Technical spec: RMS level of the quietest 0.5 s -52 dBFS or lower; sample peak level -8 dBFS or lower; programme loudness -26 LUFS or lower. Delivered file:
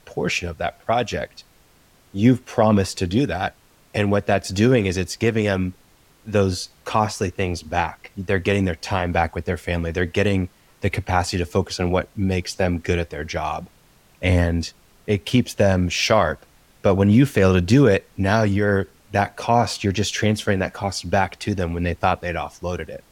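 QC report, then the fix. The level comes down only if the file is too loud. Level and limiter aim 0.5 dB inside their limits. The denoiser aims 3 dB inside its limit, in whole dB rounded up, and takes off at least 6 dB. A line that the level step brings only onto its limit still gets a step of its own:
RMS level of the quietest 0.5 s -55 dBFS: pass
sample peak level -4.5 dBFS: fail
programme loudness -21.5 LUFS: fail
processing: trim -5 dB

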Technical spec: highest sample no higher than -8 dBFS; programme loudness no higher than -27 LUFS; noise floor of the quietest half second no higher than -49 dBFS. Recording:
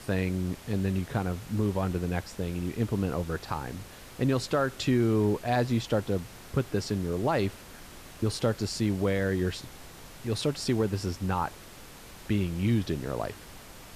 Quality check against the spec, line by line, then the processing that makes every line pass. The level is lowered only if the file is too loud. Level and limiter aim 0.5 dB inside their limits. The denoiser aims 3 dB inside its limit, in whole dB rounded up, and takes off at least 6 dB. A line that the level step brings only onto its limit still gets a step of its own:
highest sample -16.0 dBFS: pass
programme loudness -29.5 LUFS: pass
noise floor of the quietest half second -47 dBFS: fail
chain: noise reduction 6 dB, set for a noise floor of -47 dBFS

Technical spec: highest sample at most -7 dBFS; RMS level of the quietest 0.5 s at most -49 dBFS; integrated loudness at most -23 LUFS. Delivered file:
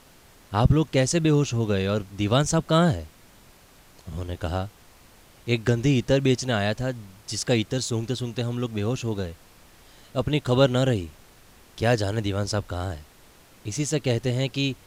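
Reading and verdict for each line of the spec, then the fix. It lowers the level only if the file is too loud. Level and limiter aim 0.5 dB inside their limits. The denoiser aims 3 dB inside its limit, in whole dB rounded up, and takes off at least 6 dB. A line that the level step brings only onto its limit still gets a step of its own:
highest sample -6.0 dBFS: fail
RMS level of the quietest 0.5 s -53 dBFS: pass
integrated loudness -24.5 LUFS: pass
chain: peak limiter -7.5 dBFS

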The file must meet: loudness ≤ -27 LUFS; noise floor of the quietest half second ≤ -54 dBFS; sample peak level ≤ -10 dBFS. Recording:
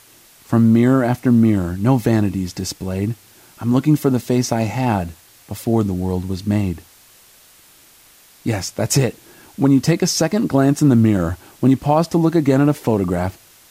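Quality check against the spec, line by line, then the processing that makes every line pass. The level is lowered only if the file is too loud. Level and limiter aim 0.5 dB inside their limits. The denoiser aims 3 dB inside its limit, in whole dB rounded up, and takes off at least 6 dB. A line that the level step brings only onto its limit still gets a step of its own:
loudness -18.0 LUFS: fail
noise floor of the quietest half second -49 dBFS: fail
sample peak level -4.5 dBFS: fail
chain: trim -9.5 dB

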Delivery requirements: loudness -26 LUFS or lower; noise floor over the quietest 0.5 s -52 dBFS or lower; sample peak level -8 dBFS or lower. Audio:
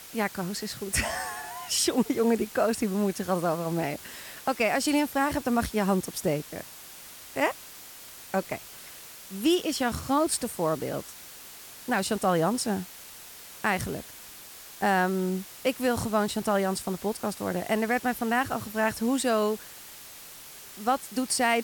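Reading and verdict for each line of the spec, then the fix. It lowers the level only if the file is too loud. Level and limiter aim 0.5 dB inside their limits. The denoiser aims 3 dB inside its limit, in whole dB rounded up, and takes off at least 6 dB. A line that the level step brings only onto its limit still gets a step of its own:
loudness -28.0 LUFS: pass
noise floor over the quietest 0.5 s -46 dBFS: fail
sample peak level -13.0 dBFS: pass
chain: noise reduction 9 dB, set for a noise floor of -46 dBFS

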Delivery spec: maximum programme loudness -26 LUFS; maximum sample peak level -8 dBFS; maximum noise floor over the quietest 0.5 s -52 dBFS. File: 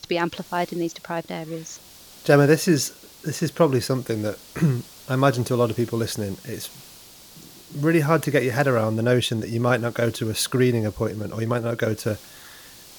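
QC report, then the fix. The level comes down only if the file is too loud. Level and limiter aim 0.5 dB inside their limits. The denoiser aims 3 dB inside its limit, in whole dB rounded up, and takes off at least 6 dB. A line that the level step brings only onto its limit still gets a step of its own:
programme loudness -23.0 LUFS: fail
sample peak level -4.5 dBFS: fail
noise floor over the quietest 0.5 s -46 dBFS: fail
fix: noise reduction 6 dB, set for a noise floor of -46 dBFS; trim -3.5 dB; peak limiter -8.5 dBFS

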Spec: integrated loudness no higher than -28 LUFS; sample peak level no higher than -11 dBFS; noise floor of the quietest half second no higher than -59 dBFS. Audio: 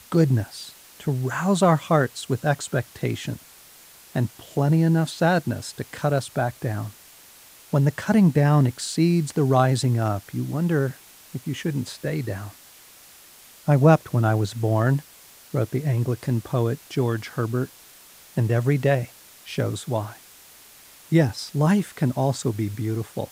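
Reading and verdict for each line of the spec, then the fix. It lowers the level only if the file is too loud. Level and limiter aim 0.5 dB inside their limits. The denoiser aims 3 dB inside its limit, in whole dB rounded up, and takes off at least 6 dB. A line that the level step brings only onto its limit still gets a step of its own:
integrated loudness -23.5 LUFS: fail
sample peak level -3.0 dBFS: fail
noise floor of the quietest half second -49 dBFS: fail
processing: noise reduction 8 dB, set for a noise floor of -49 dBFS; trim -5 dB; peak limiter -11.5 dBFS

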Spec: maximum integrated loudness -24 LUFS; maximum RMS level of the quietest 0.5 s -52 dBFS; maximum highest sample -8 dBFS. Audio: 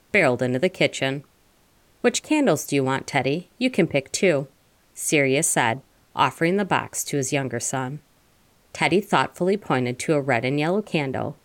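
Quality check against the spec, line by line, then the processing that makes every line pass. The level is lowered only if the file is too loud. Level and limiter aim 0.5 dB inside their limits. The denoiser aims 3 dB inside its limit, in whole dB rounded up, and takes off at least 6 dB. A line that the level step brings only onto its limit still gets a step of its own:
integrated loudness -22.5 LUFS: fail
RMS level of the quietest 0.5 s -60 dBFS: pass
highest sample -6.0 dBFS: fail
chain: trim -2 dB; peak limiter -8.5 dBFS

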